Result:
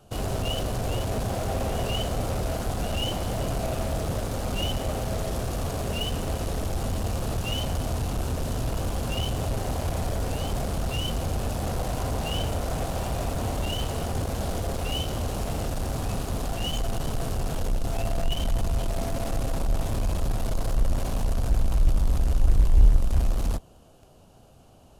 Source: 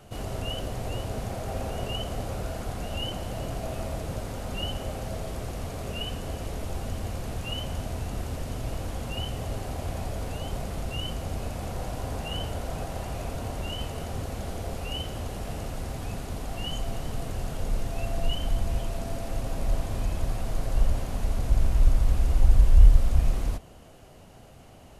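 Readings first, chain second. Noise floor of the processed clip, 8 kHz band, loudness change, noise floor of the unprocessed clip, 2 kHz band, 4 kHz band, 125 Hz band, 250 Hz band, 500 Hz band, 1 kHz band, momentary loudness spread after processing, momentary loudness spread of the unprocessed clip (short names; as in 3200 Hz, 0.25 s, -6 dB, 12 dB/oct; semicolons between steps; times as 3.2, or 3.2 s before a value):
-52 dBFS, +6.0 dB, +2.5 dB, -49 dBFS, +3.0 dB, +3.5 dB, +2.5 dB, +4.5 dB, +4.5 dB, +4.5 dB, 5 LU, 10 LU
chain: bell 2000 Hz -13 dB 0.41 oct; in parallel at -10.5 dB: fuzz box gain 35 dB, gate -40 dBFS; on the sum: gain -3.5 dB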